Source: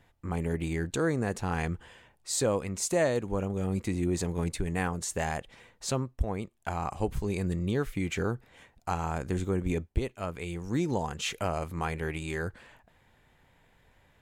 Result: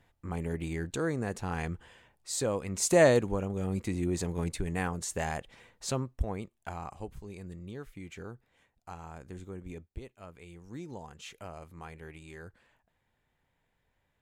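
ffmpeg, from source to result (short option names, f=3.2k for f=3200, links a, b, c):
-af "volume=6dB,afade=t=in:st=2.63:d=0.46:silence=0.334965,afade=t=out:st=3.09:d=0.29:silence=0.398107,afade=t=out:st=6.2:d=0.95:silence=0.266073"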